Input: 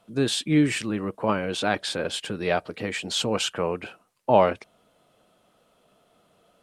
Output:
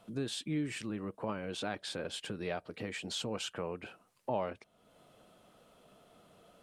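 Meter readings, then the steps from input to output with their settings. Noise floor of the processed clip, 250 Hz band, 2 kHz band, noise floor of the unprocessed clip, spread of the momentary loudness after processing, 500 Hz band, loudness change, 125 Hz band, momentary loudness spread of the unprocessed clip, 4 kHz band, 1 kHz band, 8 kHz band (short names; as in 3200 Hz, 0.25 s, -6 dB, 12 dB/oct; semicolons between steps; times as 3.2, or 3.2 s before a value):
-71 dBFS, -13.0 dB, -13.0 dB, -65 dBFS, 6 LU, -14.0 dB, -13.5 dB, -12.0 dB, 10 LU, -12.0 dB, -15.5 dB, -12.0 dB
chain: low shelf 340 Hz +3 dB; compressor 2:1, threshold -46 dBFS, peak gain reduction 18.5 dB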